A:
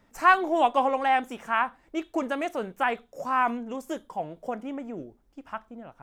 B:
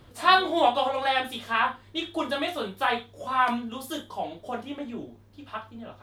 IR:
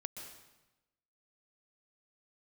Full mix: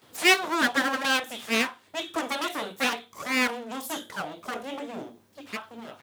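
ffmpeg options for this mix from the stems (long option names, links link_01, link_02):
-filter_complex "[0:a]aeval=exprs='abs(val(0))':channel_layout=same,volume=2dB,asplit=2[link_01][link_02];[1:a]adelay=18,volume=-1.5dB[link_03];[link_02]apad=whole_len=266479[link_04];[link_03][link_04]sidechaincompress=threshold=-27dB:ratio=8:attack=10:release=564[link_05];[link_01][link_05]amix=inputs=2:normalize=0,highpass=200,highshelf=frequency=4100:gain=9"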